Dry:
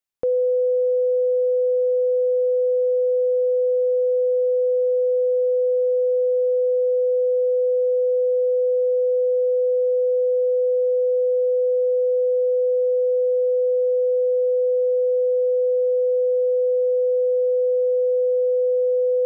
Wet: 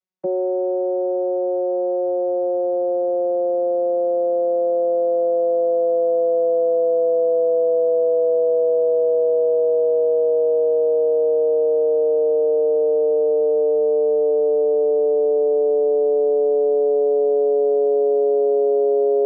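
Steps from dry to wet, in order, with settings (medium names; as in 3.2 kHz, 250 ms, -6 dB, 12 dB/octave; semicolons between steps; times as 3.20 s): vocoder on a note that slides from F#3, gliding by -5 st; trim +1.5 dB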